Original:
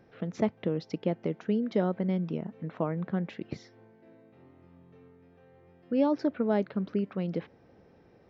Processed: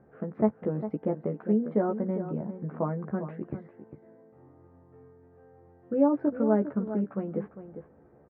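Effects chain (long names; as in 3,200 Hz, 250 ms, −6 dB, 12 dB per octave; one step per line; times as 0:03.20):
low-pass filter 1,500 Hz 24 dB per octave
double-tracking delay 14 ms −4 dB
slap from a distant wall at 69 metres, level −11 dB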